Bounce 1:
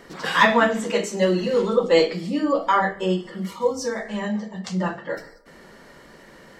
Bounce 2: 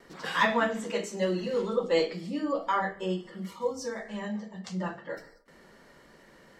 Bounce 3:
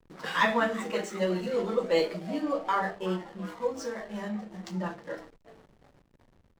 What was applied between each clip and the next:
gate with hold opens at -40 dBFS; trim -8.5 dB
frequency-shifting echo 369 ms, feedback 57%, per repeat +130 Hz, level -16 dB; hysteresis with a dead band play -42.5 dBFS

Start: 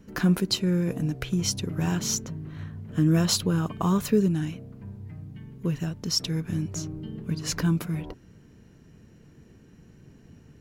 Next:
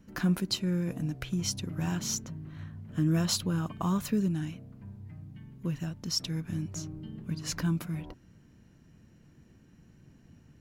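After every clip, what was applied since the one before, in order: peaking EQ 430 Hz -8.5 dB 0.3 oct; trim -5 dB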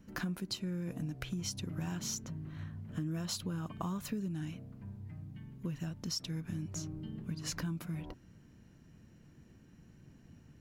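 compression 5:1, threshold -34 dBFS, peak gain reduction 11 dB; trim -1 dB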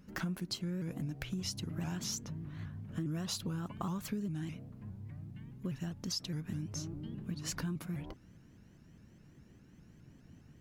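vibrato with a chosen wave saw up 4.9 Hz, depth 160 cents

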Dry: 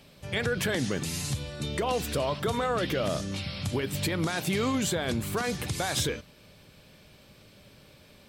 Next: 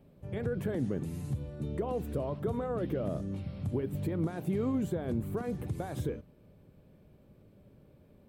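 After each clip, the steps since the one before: FFT filter 380 Hz 0 dB, 5.1 kHz -26 dB, 15 kHz -12 dB; trim -2 dB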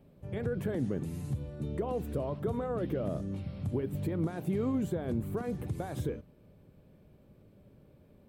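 no audible change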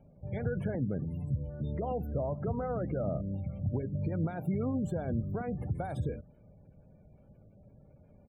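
spectral gate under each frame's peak -30 dB strong; comb 1.4 ms, depth 47%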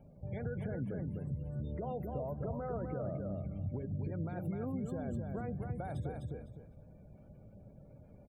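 on a send: feedback delay 253 ms, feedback 16%, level -5 dB; on the sum: compression 2:1, threshold -42 dBFS, peak gain reduction 9 dB; trim +1 dB

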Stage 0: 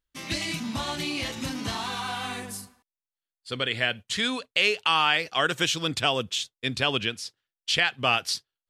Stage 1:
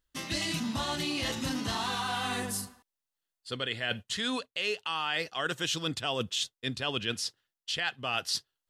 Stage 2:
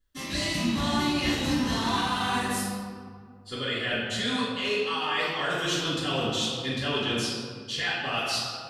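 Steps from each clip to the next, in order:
band-stop 2.3 kHz, Q 9.6; reverse; compression 6:1, threshold -33 dBFS, peak gain reduction 15 dB; reverse; trim +4 dB
reverberation RT60 2.0 s, pre-delay 3 ms, DRR -13.5 dB; trim -8.5 dB

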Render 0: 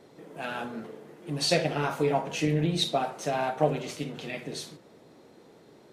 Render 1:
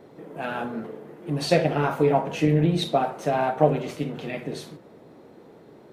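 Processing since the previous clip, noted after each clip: peaking EQ 6.5 kHz -11 dB 2.5 oct; trim +6 dB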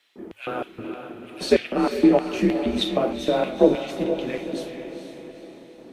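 LFO high-pass square 3.2 Hz 410–2900 Hz; frequency shift -110 Hz; echo that smears into a reverb 458 ms, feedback 48%, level -8 dB; trim -1 dB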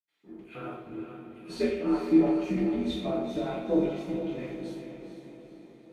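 reverberation RT60 0.80 s, pre-delay 76 ms

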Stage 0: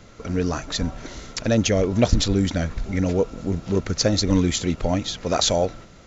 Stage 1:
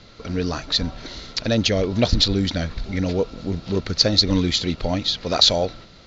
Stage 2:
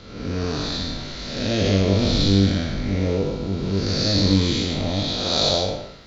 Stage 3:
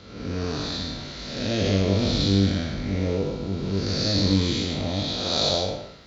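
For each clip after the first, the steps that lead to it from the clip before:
resonant low-pass 4.3 kHz, resonance Q 3.6; trim -1 dB
spectral blur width 284 ms; flutter echo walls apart 3.5 m, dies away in 0.2 s; trim +3 dB
high-pass 44 Hz; trim -3 dB

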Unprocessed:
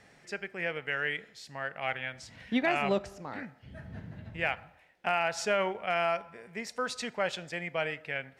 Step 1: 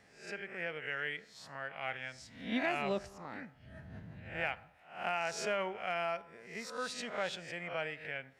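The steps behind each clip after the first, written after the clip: reverse spectral sustain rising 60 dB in 0.49 s; trim -7 dB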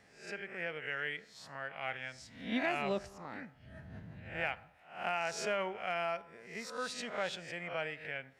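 no audible change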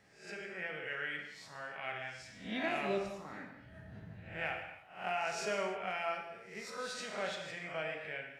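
gated-style reverb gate 340 ms falling, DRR 1 dB; trim -3.5 dB

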